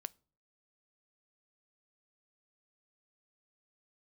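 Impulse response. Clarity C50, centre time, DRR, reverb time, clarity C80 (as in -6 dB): 27.0 dB, 1 ms, 17.5 dB, no single decay rate, 32.5 dB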